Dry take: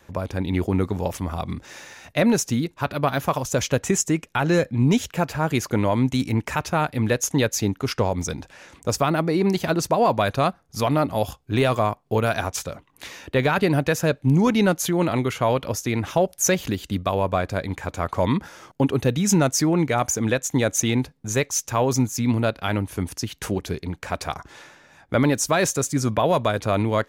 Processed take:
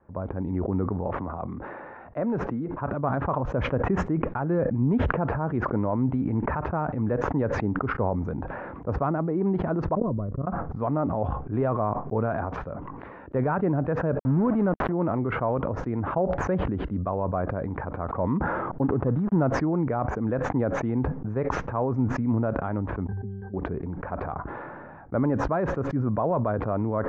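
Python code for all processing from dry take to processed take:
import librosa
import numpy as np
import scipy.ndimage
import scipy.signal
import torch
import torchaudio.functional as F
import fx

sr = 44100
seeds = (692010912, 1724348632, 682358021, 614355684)

y = fx.chain(x, sr, fx.bass_treble(bass_db=-6, treble_db=-4),
    fx.band_squash(depth_pct=40), at=(1.07, 2.77))
y = fx.chain(y, sr, fx.moving_average(points=55),
    fx.low_shelf(hz=86.0, db=12.0),
    fx.level_steps(step_db=22), at=(9.95, 10.47))
y = fx.chain(y, sr, fx.high_shelf(hz=6200.0, db=-8.0),
    fx.sample_gate(floor_db=-24.0), at=(14.19, 14.92))
y = fx.chain(y, sr, fx.dead_time(dead_ms=0.18),
    fx.peak_eq(hz=2300.0, db=-4.5, octaves=0.51), at=(18.82, 19.42))
y = fx.chain(y, sr, fx.high_shelf(hz=3700.0, db=-12.0),
    fx.octave_resonator(note='G', decay_s=0.46), at=(23.07, 23.54))
y = scipy.signal.sosfilt(scipy.signal.butter(4, 1300.0, 'lowpass', fs=sr, output='sos'), y)
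y = fx.peak_eq(y, sr, hz=220.0, db=2.0, octaves=0.77)
y = fx.sustainer(y, sr, db_per_s=22.0)
y = F.gain(torch.from_numpy(y), -6.0).numpy()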